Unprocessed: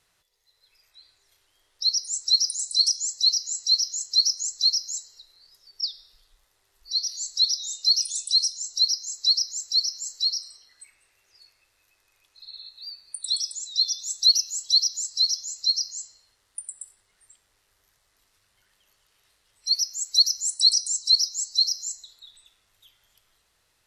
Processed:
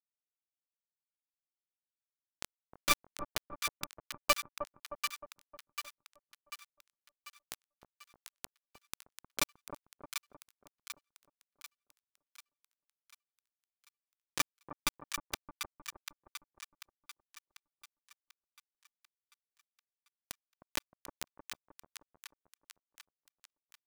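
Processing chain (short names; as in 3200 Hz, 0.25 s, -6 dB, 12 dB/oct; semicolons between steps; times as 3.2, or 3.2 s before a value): FFT order left unsorted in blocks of 64 samples; octave resonator D, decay 0.35 s; companded quantiser 2-bit; on a send: split-band echo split 1100 Hz, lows 0.31 s, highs 0.742 s, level -6.5 dB; on the sum: gain +9 dB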